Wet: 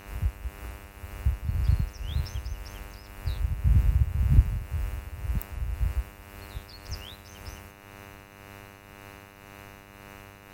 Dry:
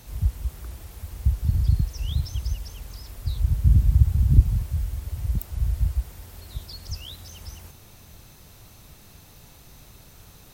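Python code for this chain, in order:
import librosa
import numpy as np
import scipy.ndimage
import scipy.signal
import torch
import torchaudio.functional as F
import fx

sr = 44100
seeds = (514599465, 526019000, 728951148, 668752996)

y = fx.dmg_buzz(x, sr, base_hz=100.0, harmonics=29, level_db=-43.0, tilt_db=-2, odd_only=False)
y = fx.tremolo_shape(y, sr, shape='triangle', hz=1.9, depth_pct=50)
y = F.gain(torch.from_numpy(y), -3.0).numpy()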